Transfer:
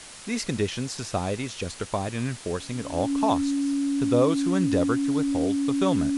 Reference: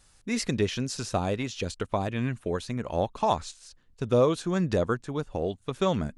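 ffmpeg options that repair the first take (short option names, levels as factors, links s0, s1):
-af "bandreject=f=280:w=30,afftdn=nr=17:nf=-40"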